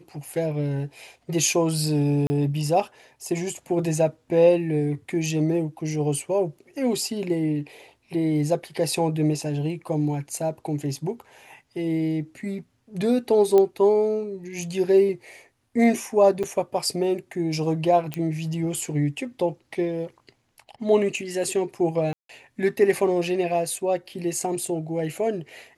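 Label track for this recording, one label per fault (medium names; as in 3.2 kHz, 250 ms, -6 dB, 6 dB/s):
2.270000	2.300000	dropout 30 ms
13.580000	13.580000	pop -10 dBFS
16.430000	16.440000	dropout 6.1 ms
18.140000	18.140000	pop -14 dBFS
22.130000	22.290000	dropout 163 ms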